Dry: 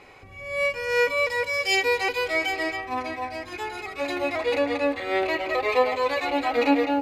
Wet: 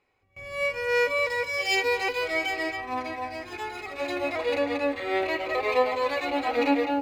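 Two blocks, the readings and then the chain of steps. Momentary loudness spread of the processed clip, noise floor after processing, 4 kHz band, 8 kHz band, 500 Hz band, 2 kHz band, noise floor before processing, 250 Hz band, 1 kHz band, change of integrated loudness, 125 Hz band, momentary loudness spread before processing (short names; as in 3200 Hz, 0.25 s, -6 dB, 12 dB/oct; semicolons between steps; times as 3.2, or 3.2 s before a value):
11 LU, -55 dBFS, -2.5 dB, -3.0 dB, -2.0 dB, -2.0 dB, -44 dBFS, -2.5 dB, -2.0 dB, -2.0 dB, -2.5 dB, 11 LU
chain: median filter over 3 samples; reverse echo 87 ms -12 dB; gate with hold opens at -33 dBFS; gain -2.5 dB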